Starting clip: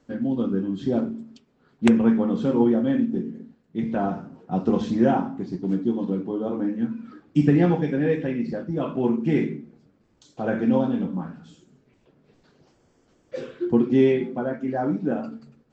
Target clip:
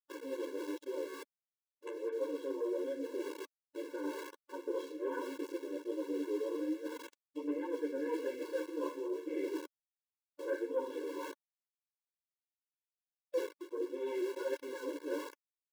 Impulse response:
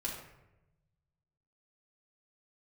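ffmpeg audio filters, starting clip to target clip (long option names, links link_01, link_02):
-filter_complex "[0:a]asplit=2[link_01][link_02];[1:a]atrim=start_sample=2205,afade=type=out:start_time=0.37:duration=0.01,atrim=end_sample=16758[link_03];[link_02][link_03]afir=irnorm=-1:irlink=0,volume=-19.5dB[link_04];[link_01][link_04]amix=inputs=2:normalize=0,aeval=exprs='0.531*(cos(1*acos(clip(val(0)/0.531,-1,1)))-cos(1*PI/2))+0.119*(cos(4*acos(clip(val(0)/0.531,-1,1)))-cos(4*PI/2))':channel_layout=same,flanger=delay=10:depth=4.1:regen=19:speed=0.39:shape=triangular,highshelf=frequency=7100:gain=-7,flanger=delay=5.8:depth=8.2:regen=10:speed=1.3:shape=triangular,equalizer=frequency=520:width=1.3:gain=4,dynaudnorm=framelen=110:gausssize=31:maxgain=6dB,aeval=exprs='val(0)*gte(abs(val(0)),0.0188)':channel_layout=same,areverse,acompressor=threshold=-32dB:ratio=6,areverse,afftfilt=real='re*eq(mod(floor(b*sr/1024/290),2),1)':imag='im*eq(mod(floor(b*sr/1024/290),2),1)':win_size=1024:overlap=0.75,volume=1.5dB"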